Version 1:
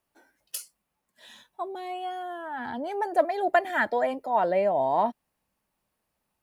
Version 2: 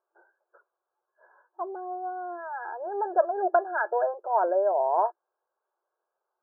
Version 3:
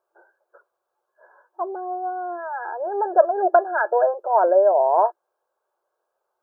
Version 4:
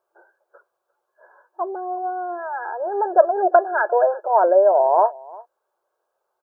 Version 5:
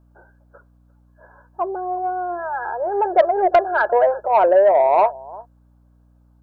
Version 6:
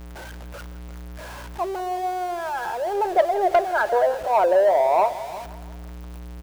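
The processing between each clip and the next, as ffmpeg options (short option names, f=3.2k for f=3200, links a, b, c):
-af "afftfilt=real='re*between(b*sr/4096,340,1700)':imag='im*between(b*sr/4096,340,1700)':win_size=4096:overlap=0.75"
-af "equalizer=f=560:t=o:w=0.55:g=4,volume=5dB"
-filter_complex "[0:a]asplit=2[a][b];[b]adelay=349.9,volume=-22dB,highshelf=f=4k:g=-7.87[c];[a][c]amix=inputs=2:normalize=0,volume=1.5dB"
-af "acontrast=71,aeval=exprs='val(0)+0.00355*(sin(2*PI*60*n/s)+sin(2*PI*2*60*n/s)/2+sin(2*PI*3*60*n/s)/3+sin(2*PI*4*60*n/s)/4+sin(2*PI*5*60*n/s)/5)':c=same,volume=-4dB"
-af "aeval=exprs='val(0)+0.5*0.0376*sgn(val(0))':c=same,aecho=1:1:167|334|501|668|835:0.141|0.0763|0.0412|0.0222|0.012,volume=-4.5dB"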